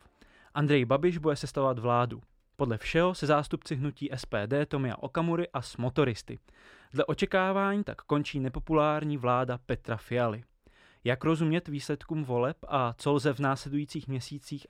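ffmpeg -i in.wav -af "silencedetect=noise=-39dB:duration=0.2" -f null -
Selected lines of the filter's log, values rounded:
silence_start: 0.00
silence_end: 0.55 | silence_duration: 0.55
silence_start: 2.19
silence_end: 2.59 | silence_duration: 0.40
silence_start: 6.36
silence_end: 6.94 | silence_duration: 0.58
silence_start: 10.39
silence_end: 11.05 | silence_duration: 0.66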